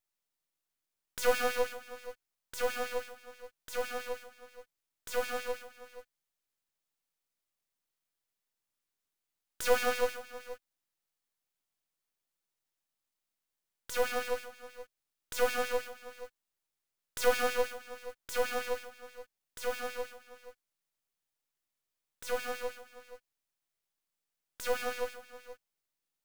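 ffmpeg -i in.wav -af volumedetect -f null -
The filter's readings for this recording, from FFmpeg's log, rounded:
mean_volume: -37.8 dB
max_volume: -12.3 dB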